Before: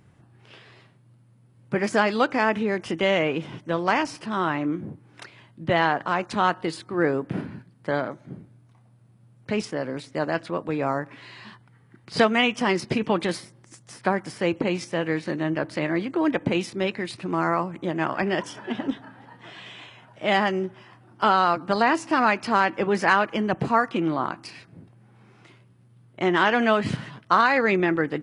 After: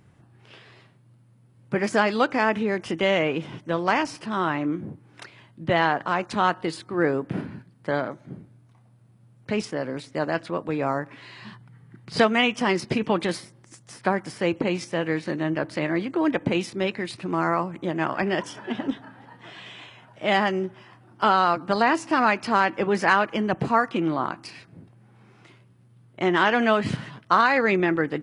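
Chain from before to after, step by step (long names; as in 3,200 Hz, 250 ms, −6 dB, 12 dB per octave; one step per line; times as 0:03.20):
0:11.42–0:12.16: parametric band 150 Hz +9 dB 1 octave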